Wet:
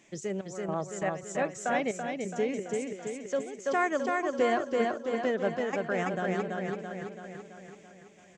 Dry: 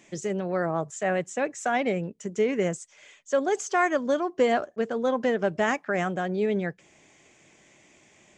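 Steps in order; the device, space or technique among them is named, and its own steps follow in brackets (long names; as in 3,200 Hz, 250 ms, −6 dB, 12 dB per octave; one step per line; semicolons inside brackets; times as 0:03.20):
trance gate with a delay (gate pattern "xxx..xxx.xx" 110 BPM −12 dB; repeating echo 333 ms, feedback 57%, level −3 dB)
0:01.96–0:03.59: dynamic equaliser 1,200 Hz, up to −7 dB, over −41 dBFS, Q 0.92
level −4.5 dB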